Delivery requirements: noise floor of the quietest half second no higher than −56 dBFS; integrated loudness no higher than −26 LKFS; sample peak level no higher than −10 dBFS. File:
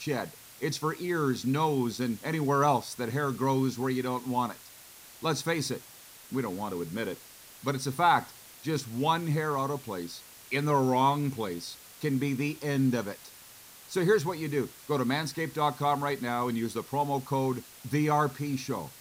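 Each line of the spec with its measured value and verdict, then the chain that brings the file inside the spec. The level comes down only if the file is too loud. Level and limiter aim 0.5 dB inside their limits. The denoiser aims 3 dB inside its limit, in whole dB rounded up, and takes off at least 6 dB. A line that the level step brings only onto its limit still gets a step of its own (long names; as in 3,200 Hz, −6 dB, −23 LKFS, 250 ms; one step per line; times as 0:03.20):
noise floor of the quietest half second −51 dBFS: out of spec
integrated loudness −30.0 LKFS: in spec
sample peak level −13.5 dBFS: in spec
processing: broadband denoise 8 dB, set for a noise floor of −51 dBFS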